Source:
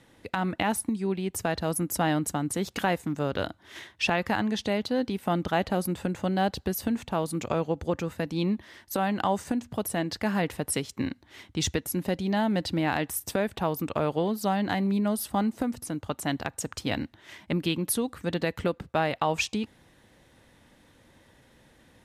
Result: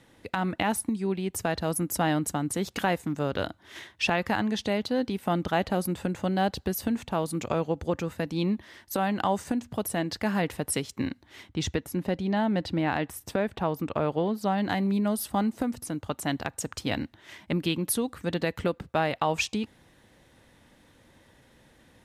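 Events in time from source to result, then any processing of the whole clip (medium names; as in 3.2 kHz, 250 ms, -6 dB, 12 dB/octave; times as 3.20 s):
11.49–14.58 s: treble shelf 5.1 kHz -11 dB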